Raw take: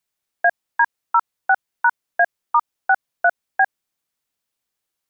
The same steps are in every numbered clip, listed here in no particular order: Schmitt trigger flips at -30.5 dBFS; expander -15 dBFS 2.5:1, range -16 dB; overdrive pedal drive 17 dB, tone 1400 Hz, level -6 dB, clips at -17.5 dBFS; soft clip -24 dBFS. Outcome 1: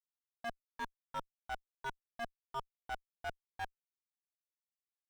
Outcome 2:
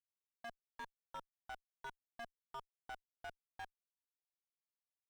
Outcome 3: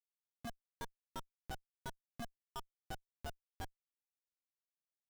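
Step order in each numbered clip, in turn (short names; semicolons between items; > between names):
Schmitt trigger > soft clip > overdrive pedal > expander; soft clip > Schmitt trigger > overdrive pedal > expander; soft clip > expander > overdrive pedal > Schmitt trigger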